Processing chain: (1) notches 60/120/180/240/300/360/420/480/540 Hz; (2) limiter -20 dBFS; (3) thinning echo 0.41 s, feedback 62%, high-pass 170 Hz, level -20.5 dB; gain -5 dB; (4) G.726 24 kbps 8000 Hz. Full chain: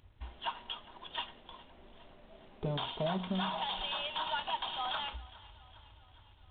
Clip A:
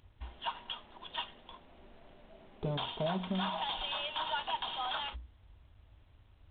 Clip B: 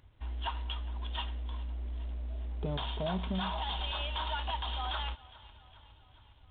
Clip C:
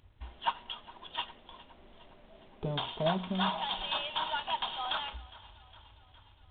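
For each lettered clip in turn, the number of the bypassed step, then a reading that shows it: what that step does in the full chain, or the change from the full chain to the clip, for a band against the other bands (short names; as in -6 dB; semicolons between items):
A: 3, momentary loudness spread change -4 LU; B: 1, 125 Hz band +6.5 dB; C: 2, crest factor change +5.5 dB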